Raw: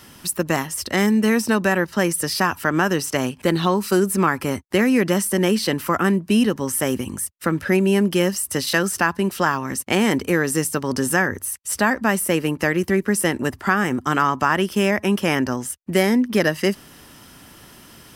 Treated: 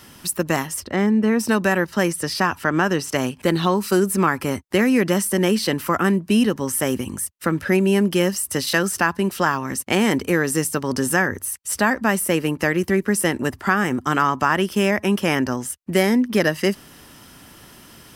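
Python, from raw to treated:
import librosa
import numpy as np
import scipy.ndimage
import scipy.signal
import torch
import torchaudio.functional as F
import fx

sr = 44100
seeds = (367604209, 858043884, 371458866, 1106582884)

y = fx.lowpass(x, sr, hz=1300.0, slope=6, at=(0.79, 1.39), fade=0.02)
y = fx.high_shelf(y, sr, hz=9900.0, db=-11.0, at=(2.11, 3.09))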